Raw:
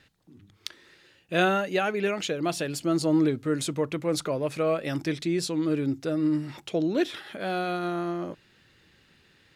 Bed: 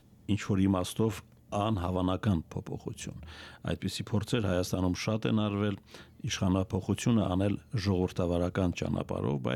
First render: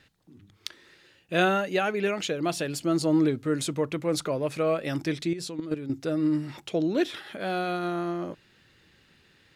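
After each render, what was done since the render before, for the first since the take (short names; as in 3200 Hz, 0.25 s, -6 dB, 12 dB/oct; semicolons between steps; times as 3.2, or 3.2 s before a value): 5.33–5.9 level quantiser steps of 12 dB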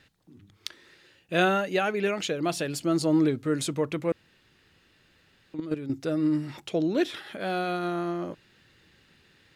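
4.12–5.54 room tone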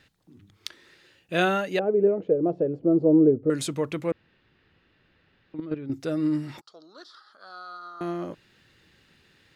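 1.79–3.5 synth low-pass 480 Hz, resonance Q 3.2; 4.11–5.92 air absorption 250 m; 6.61–8.01 double band-pass 2400 Hz, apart 1.9 oct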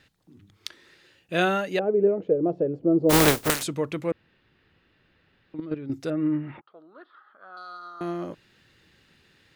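3.09–3.62 spectral contrast lowered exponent 0.25; 6.1–7.57 steep low-pass 2700 Hz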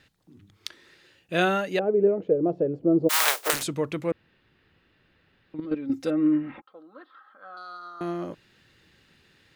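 3.07–3.52 HPF 1300 Hz -> 380 Hz 24 dB/oct; 5.64–7.54 comb 3.8 ms, depth 71%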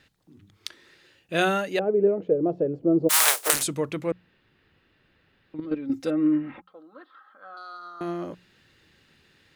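notches 60/120/180 Hz; dynamic EQ 9800 Hz, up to +8 dB, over -47 dBFS, Q 0.8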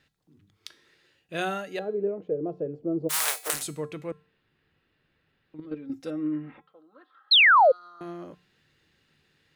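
resonator 150 Hz, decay 0.41 s, harmonics odd, mix 60%; 7.31–7.72 painted sound fall 480–4400 Hz -16 dBFS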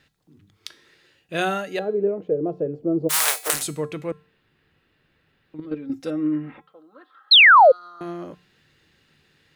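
gain +6 dB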